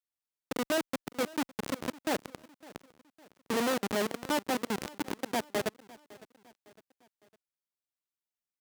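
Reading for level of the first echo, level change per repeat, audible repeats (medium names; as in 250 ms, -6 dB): -21.0 dB, -6.5 dB, 3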